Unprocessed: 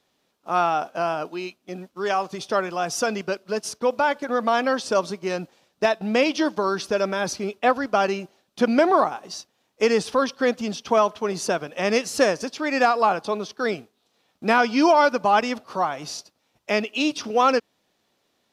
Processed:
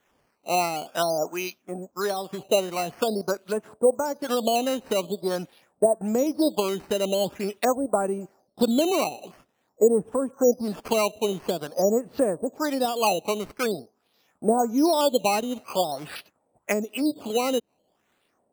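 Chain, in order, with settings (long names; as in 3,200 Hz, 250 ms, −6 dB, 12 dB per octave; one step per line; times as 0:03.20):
treble cut that deepens with the level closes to 550 Hz, closed at −19.5 dBFS
parametric band 5,700 Hz +2.5 dB 2.2 octaves, from 0:08.18 −13.5 dB, from 0:10.30 −2.5 dB
auto-filter low-pass sine 1.5 Hz 590–4,200 Hz
sample-and-hold swept by an LFO 9×, swing 100% 0.47 Hz
level −1 dB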